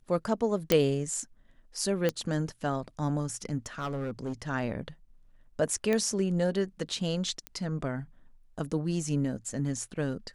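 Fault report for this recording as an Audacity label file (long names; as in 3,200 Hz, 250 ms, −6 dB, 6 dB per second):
0.720000	0.720000	click −7 dBFS
2.090000	2.090000	click −14 dBFS
3.660000	4.330000	clipping −29 dBFS
5.930000	5.930000	click −16 dBFS
7.470000	7.470000	click −21 dBFS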